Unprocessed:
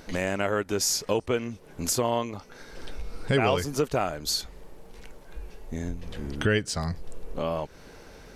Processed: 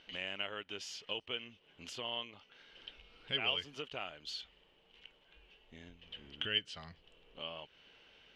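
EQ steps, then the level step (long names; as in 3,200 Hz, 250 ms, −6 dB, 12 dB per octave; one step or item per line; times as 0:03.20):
resonant band-pass 3,000 Hz, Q 9.8
spectral tilt −4 dB per octave
+11.5 dB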